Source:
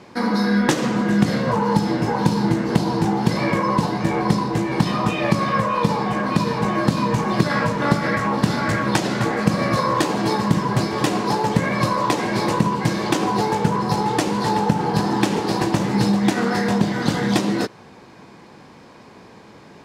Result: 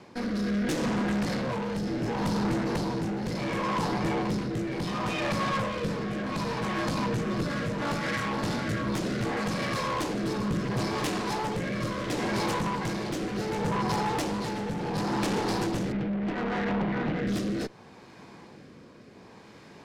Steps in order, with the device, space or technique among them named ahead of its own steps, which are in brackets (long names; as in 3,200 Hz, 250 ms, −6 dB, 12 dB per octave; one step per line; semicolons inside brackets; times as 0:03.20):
0:15.92–0:17.27: elliptic band-pass filter 140–2,500 Hz
overdriven rotary cabinet (tube saturation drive 24 dB, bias 0.6; rotating-speaker cabinet horn 0.7 Hz)